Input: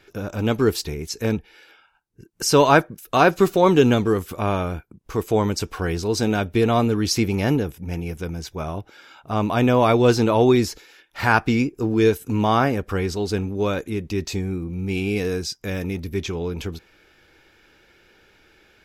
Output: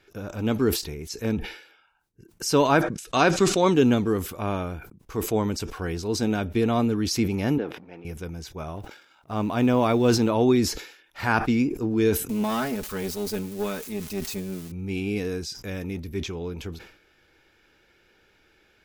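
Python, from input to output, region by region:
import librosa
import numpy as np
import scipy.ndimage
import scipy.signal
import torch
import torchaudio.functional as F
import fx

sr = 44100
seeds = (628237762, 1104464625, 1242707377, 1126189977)

y = fx.chain(x, sr, fx.lowpass(hz=8300.0, slope=24),
    fx.high_shelf(hz=2600.0, db=9.0), at=(2.82, 3.74))
y = fx.chain(y, sr, fx.law_mismatch(coded='A'),
    fx.highpass(hz=350.0, slope=12),
    fx.air_absorb(metres=320.0), at=(7.58, 8.05))
y = fx.chain(y, sr, fx.law_mismatch(coded='A'),
    fx.sustainer(db_per_s=95.0), at=(8.76, 10.29))
y = fx.chain(y, sr, fx.crossing_spikes(level_db=-21.0),
    fx.comb(ms=4.7, depth=0.66),
    fx.tube_stage(drive_db=16.0, bias=0.65), at=(12.29, 14.72))
y = fx.dynamic_eq(y, sr, hz=250.0, q=2.0, threshold_db=-30.0, ratio=4.0, max_db=5)
y = fx.sustainer(y, sr, db_per_s=96.0)
y = F.gain(torch.from_numpy(y), -6.0).numpy()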